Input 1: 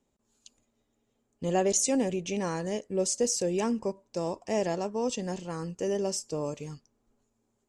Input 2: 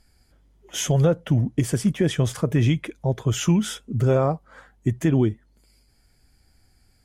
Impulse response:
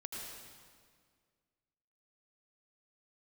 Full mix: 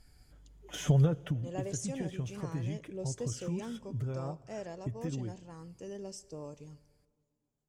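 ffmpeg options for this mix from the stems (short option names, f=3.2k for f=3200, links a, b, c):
-filter_complex "[0:a]aphaser=in_gain=1:out_gain=1:delay=1.9:decay=0.23:speed=0.31:type=triangular,volume=-15dB,asplit=2[a][b];[b]volume=-18.5dB[c];[1:a]deesser=0.85,aecho=1:1:6.8:0.37,acompressor=threshold=-22dB:ratio=6,volume=-3.5dB,afade=t=out:st=1.03:d=0.35:silence=0.281838,asplit=2[d][e];[e]volume=-19dB[f];[2:a]atrim=start_sample=2205[g];[c][f]amix=inputs=2:normalize=0[h];[h][g]afir=irnorm=-1:irlink=0[i];[a][d][i]amix=inputs=3:normalize=0,equalizer=f=66:t=o:w=2.4:g=6"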